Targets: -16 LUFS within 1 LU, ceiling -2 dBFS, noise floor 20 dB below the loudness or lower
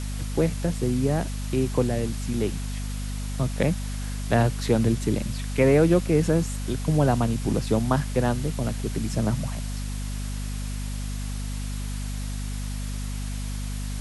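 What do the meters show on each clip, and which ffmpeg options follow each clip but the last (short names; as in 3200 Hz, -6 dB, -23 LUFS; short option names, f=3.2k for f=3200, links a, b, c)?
hum 50 Hz; harmonics up to 250 Hz; hum level -28 dBFS; noise floor -30 dBFS; noise floor target -47 dBFS; loudness -26.5 LUFS; peak -8.0 dBFS; loudness target -16.0 LUFS
-> -af "bandreject=f=50:t=h:w=6,bandreject=f=100:t=h:w=6,bandreject=f=150:t=h:w=6,bandreject=f=200:t=h:w=6,bandreject=f=250:t=h:w=6"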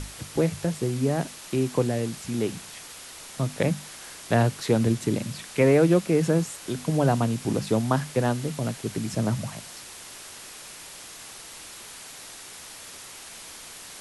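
hum none; noise floor -43 dBFS; noise floor target -46 dBFS
-> -af "afftdn=nr=6:nf=-43"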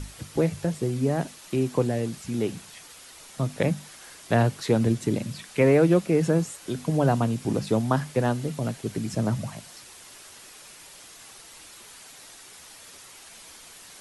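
noise floor -48 dBFS; loudness -25.5 LUFS; peak -8.0 dBFS; loudness target -16.0 LUFS
-> -af "volume=9.5dB,alimiter=limit=-2dB:level=0:latency=1"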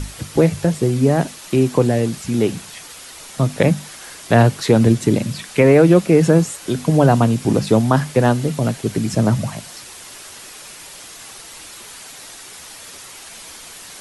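loudness -16.5 LUFS; peak -2.0 dBFS; noise floor -38 dBFS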